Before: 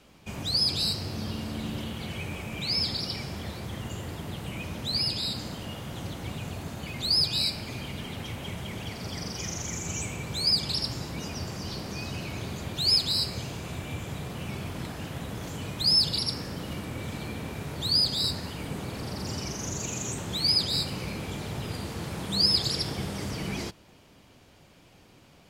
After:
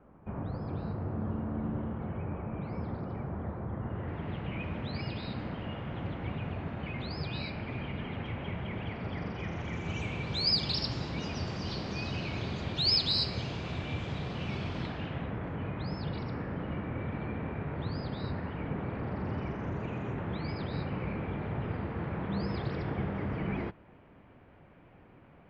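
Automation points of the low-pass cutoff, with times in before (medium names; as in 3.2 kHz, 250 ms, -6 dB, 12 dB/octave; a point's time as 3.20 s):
low-pass 24 dB/octave
3.79 s 1.4 kHz
4.27 s 2.5 kHz
9.48 s 2.5 kHz
10.40 s 4.7 kHz
14.76 s 4.7 kHz
15.41 s 2.1 kHz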